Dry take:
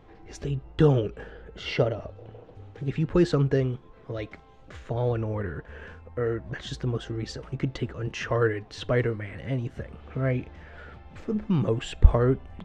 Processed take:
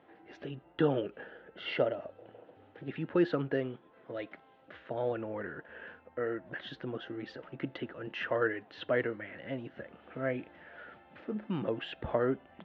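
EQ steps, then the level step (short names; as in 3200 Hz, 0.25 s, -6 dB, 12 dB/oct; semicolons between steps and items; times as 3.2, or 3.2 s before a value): speaker cabinet 340–3000 Hz, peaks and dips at 430 Hz -8 dB, 780 Hz -3 dB, 1100 Hz -8 dB, 2300 Hz -6 dB; 0.0 dB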